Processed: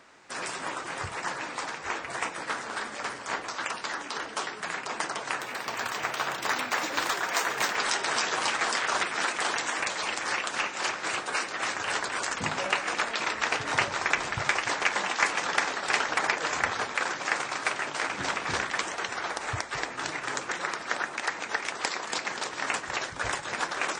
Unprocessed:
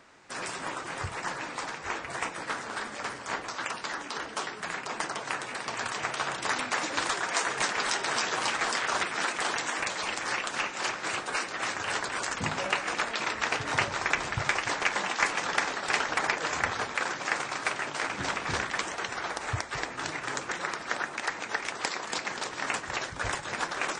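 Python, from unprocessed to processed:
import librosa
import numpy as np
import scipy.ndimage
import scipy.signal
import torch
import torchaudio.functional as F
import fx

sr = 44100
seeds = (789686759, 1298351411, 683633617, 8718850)

y = fx.low_shelf(x, sr, hz=170.0, db=-6.5)
y = fx.resample_linear(y, sr, factor=2, at=(5.4, 7.76))
y = y * 10.0 ** (1.5 / 20.0)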